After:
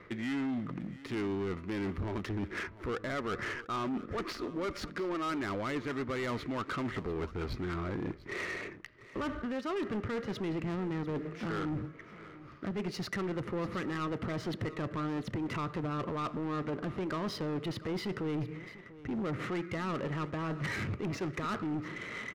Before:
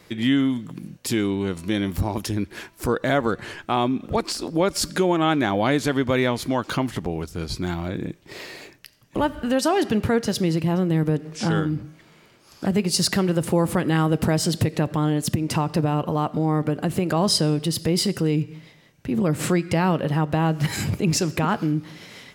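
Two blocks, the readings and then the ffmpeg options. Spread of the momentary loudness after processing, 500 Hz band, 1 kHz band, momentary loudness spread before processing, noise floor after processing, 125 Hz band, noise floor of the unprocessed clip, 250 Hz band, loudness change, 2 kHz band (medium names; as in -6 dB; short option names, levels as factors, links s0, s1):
4 LU, -12.5 dB, -12.0 dB, 10 LU, -51 dBFS, -14.5 dB, -53 dBFS, -13.0 dB, -13.0 dB, -8.5 dB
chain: -af "equalizer=f=160:t=o:w=0.33:g=-5,equalizer=f=400:t=o:w=0.33:g=4,equalizer=f=800:t=o:w=0.33:g=-9,equalizer=f=1250:t=o:w=0.33:g=10,equalizer=f=2000:t=o:w=0.33:g=9,equalizer=f=5000:t=o:w=0.33:g=-5,equalizer=f=8000:t=o:w=0.33:g=-11,areverse,acompressor=threshold=0.0447:ratio=6,areverse,acrusher=bits=4:mode=log:mix=0:aa=0.000001,asoftclip=type=tanh:threshold=0.0316,adynamicsmooth=sensitivity=6.5:basefreq=1800,aecho=1:1:693:0.133"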